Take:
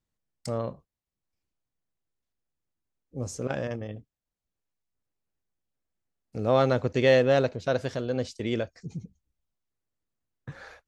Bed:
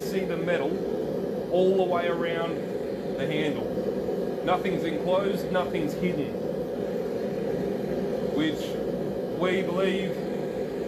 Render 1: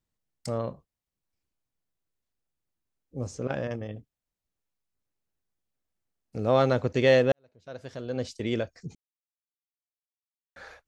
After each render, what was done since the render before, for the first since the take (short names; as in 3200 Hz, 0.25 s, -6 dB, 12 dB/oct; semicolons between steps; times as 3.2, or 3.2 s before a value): 3.27–3.71 air absorption 76 m; 7.32–8.29 fade in quadratic; 8.95–10.56 mute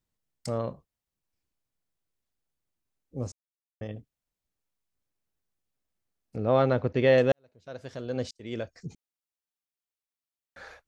3.32–3.81 mute; 6.36–7.18 air absorption 220 m; 8.31–8.79 fade in linear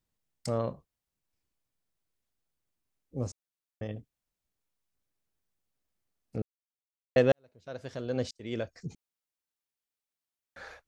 6.42–7.16 mute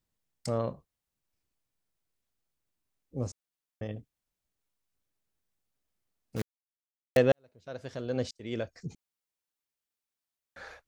6.36–7.17 companded quantiser 4-bit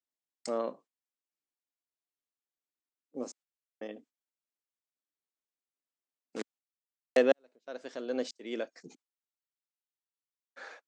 gate -52 dBFS, range -12 dB; elliptic band-pass 260–8000 Hz, stop band 40 dB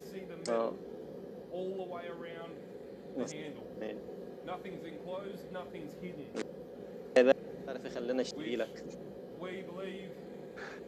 add bed -17 dB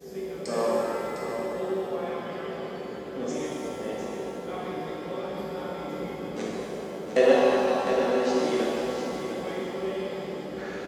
echo 0.705 s -8.5 dB; shimmer reverb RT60 2.5 s, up +7 st, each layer -8 dB, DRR -7 dB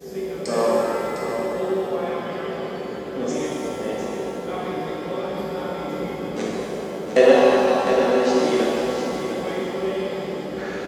gain +6 dB; limiter -2 dBFS, peak gain reduction 1 dB